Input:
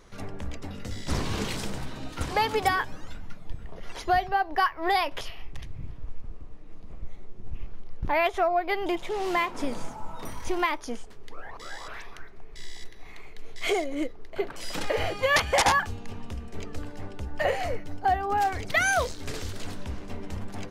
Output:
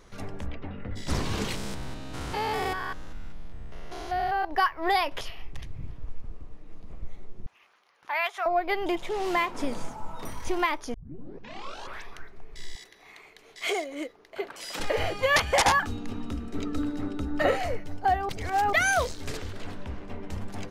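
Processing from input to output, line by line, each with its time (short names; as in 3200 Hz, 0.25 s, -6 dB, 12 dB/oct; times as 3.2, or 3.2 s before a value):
0.45–0.95 LPF 3900 Hz -> 2000 Hz 24 dB/oct
1.55–4.45 stepped spectrum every 0.2 s
7.46–8.46 Chebyshev high-pass 1200 Hz
10.94 tape start 1.08 s
12.75–14.8 HPF 520 Hz 6 dB/oct
15.82–17.57 small resonant body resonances 280/1300/3800 Hz, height 13 dB -> 17 dB
18.29–18.73 reverse
19.37–20.3 tone controls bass -2 dB, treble -11 dB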